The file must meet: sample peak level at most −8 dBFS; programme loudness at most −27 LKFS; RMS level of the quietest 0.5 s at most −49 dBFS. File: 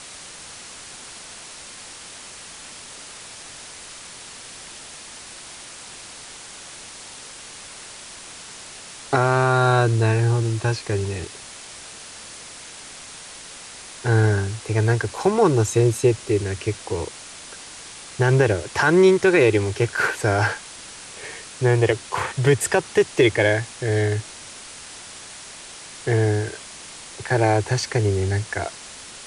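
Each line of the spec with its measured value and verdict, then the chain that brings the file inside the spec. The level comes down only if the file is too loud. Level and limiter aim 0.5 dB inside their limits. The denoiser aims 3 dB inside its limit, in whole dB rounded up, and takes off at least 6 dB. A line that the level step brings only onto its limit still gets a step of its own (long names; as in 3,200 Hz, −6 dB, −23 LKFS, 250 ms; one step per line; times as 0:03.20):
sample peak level −5.5 dBFS: out of spec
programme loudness −20.5 LKFS: out of spec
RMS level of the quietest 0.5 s −40 dBFS: out of spec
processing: broadband denoise 6 dB, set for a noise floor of −40 dBFS
level −7 dB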